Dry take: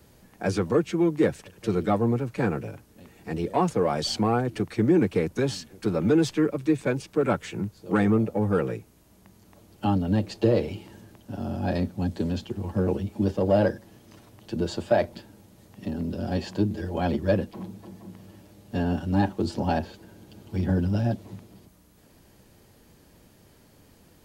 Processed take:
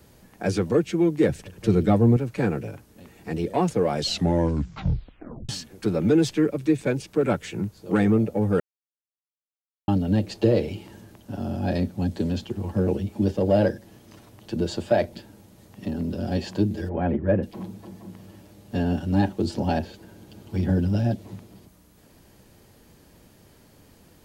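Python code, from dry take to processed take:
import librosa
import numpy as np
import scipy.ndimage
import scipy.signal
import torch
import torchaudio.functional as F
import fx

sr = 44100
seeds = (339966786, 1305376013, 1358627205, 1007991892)

y = fx.low_shelf(x, sr, hz=220.0, db=8.5, at=(1.29, 2.17))
y = fx.lowpass(y, sr, hz=2100.0, slope=24, at=(16.88, 17.42), fade=0.02)
y = fx.edit(y, sr, fx.tape_stop(start_s=3.97, length_s=1.52),
    fx.silence(start_s=8.6, length_s=1.28), tone=tone)
y = fx.dynamic_eq(y, sr, hz=1100.0, q=1.6, threshold_db=-44.0, ratio=4.0, max_db=-6)
y = F.gain(torch.from_numpy(y), 2.0).numpy()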